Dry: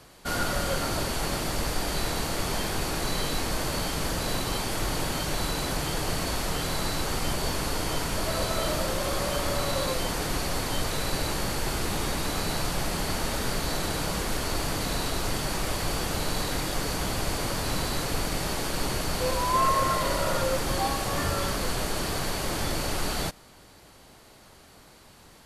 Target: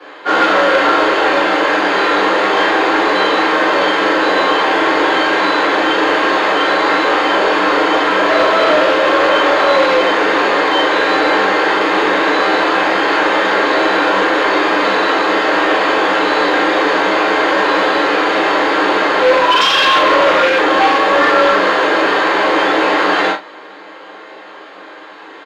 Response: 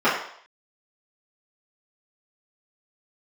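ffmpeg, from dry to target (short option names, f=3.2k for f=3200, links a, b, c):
-filter_complex "[1:a]atrim=start_sample=2205,atrim=end_sample=3969,asetrate=57330,aresample=44100[a];[0:a][a]afir=irnorm=-1:irlink=0,acrossover=split=250|4000[b][c][d];[c]aeval=exprs='0.447*(abs(mod(val(0)/0.447+3,4)-2)-1)':c=same[e];[b][e][d]amix=inputs=3:normalize=0,highpass=160,acrossover=split=240 4300:gain=0.158 1 0.1[f][g][h];[f][g][h]amix=inputs=3:normalize=0,bandreject=f=680:w=12,asplit=2[i][j];[j]adelay=41,volume=-5.5dB[k];[i][k]amix=inputs=2:normalize=0,asplit=2[l][m];[m]acontrast=42,volume=0dB[n];[l][n]amix=inputs=2:normalize=0,equalizer=f=230:t=o:w=0.25:g=-11,volume=-7dB"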